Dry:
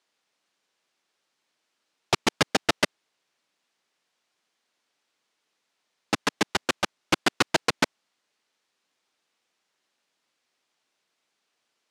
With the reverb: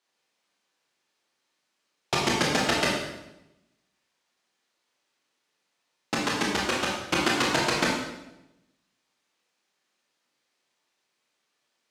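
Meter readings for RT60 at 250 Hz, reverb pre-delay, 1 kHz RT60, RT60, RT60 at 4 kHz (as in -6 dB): 1.1 s, 19 ms, 0.90 s, 0.90 s, 0.80 s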